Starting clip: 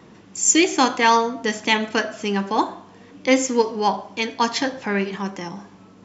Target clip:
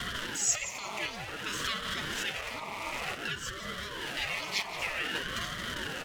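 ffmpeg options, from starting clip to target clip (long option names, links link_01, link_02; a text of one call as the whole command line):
ffmpeg -i in.wav -filter_complex "[0:a]aeval=exprs='val(0)+0.5*0.126*sgn(val(0))':channel_layout=same,asplit=3[link_01][link_02][link_03];[link_01]bandpass=frequency=300:width_type=q:width=8,volume=0dB[link_04];[link_02]bandpass=frequency=870:width_type=q:width=8,volume=-6dB[link_05];[link_03]bandpass=frequency=2240:width_type=q:width=8,volume=-9dB[link_06];[link_04][link_05][link_06]amix=inputs=3:normalize=0,acompressor=threshold=-31dB:ratio=5,equalizer=frequency=920:width=1:gain=8.5,afftfilt=real='re*lt(hypot(re,im),0.0794)':imag='im*lt(hypot(re,im),0.0794)':win_size=1024:overlap=0.75,asplit=4[link_07][link_08][link_09][link_10];[link_08]adelay=176,afreqshift=-130,volume=-14dB[link_11];[link_09]adelay=352,afreqshift=-260,volume=-23.4dB[link_12];[link_10]adelay=528,afreqshift=-390,volume=-32.7dB[link_13];[link_07][link_11][link_12][link_13]amix=inputs=4:normalize=0,agate=range=-33dB:threshold=-46dB:ratio=3:detection=peak,crystalizer=i=9:c=0,anlmdn=0.00251,aecho=1:1:6.5:0.47,aeval=exprs='val(0)*sin(2*PI*500*n/s+500*0.8/0.54*sin(2*PI*0.54*n/s))':channel_layout=same,volume=1dB" out.wav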